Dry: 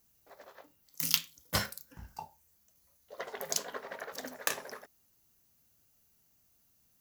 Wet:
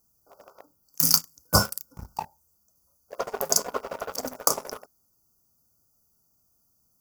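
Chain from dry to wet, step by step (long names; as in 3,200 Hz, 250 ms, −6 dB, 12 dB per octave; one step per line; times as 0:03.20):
brick-wall band-stop 1,500–4,500 Hz
leveller curve on the samples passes 2
level +5 dB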